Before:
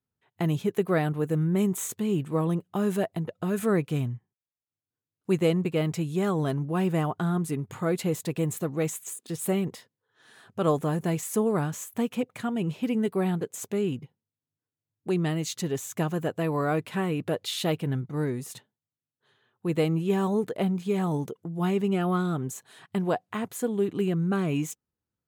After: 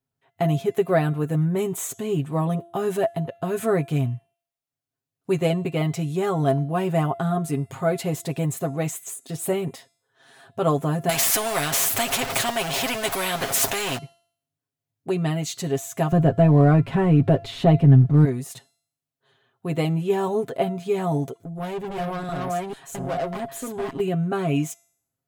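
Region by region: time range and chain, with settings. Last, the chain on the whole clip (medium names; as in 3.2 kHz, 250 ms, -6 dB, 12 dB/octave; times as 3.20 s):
11.09–13.98 s: jump at every zero crossing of -40.5 dBFS + peaking EQ 200 Hz +13 dB 0.22 oct + spectrum-flattening compressor 4:1
16.12–18.25 s: companding laws mixed up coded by mu + RIAA curve playback + three bands compressed up and down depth 40%
21.40–24.00 s: chunks repeated in reverse 443 ms, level 0 dB + upward compressor, threshold -45 dBFS + valve stage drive 29 dB, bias 0.4
whole clip: peaking EQ 690 Hz +10.5 dB 0.23 oct; comb 7.4 ms, depth 70%; de-hum 341.2 Hz, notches 35; trim +1 dB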